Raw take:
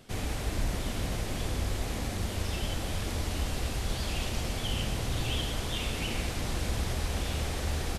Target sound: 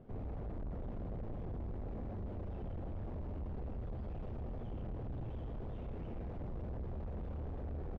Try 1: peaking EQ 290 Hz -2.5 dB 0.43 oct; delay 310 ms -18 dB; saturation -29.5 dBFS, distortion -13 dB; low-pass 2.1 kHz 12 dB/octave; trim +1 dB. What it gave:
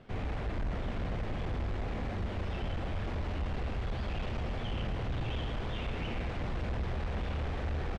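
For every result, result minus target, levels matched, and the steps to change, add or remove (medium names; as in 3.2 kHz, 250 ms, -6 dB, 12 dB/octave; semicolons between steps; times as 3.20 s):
2 kHz band +13.5 dB; saturation: distortion -7 dB
change: low-pass 650 Hz 12 dB/octave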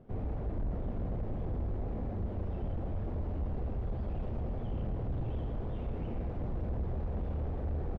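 saturation: distortion -7 dB
change: saturation -39.5 dBFS, distortion -6 dB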